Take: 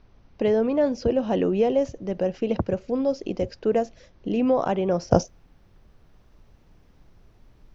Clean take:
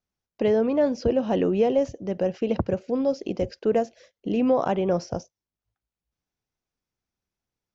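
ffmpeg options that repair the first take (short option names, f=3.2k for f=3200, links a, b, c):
-af "agate=range=-21dB:threshold=-47dB,asetnsamples=n=441:p=0,asendcmd='5.11 volume volume -12dB',volume=0dB"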